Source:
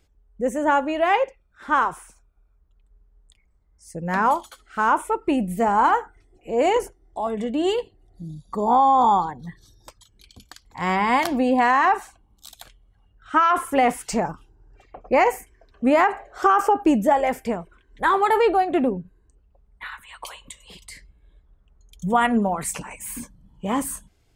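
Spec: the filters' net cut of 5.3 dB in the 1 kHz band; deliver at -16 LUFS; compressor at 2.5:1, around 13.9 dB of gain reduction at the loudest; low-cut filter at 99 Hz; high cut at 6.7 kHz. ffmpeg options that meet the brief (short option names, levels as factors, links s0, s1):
-af "highpass=99,lowpass=6700,equalizer=f=1000:t=o:g=-7,acompressor=threshold=0.0141:ratio=2.5,volume=10.6"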